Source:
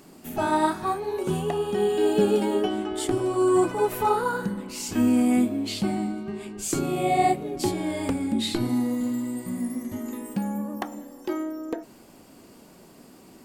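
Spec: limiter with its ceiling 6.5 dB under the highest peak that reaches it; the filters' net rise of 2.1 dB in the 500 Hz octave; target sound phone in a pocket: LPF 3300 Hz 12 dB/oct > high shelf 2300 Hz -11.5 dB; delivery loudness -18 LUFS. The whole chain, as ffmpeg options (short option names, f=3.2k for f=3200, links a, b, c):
-af "equalizer=f=500:t=o:g=3.5,alimiter=limit=-14.5dB:level=0:latency=1,lowpass=3.3k,highshelf=f=2.3k:g=-11.5,volume=8.5dB"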